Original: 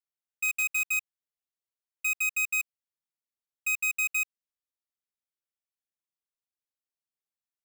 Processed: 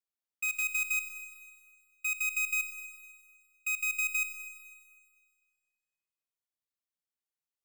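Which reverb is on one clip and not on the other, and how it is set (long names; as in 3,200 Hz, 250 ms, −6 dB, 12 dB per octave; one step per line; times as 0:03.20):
four-comb reverb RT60 1.8 s, combs from 32 ms, DRR 9 dB
level −4 dB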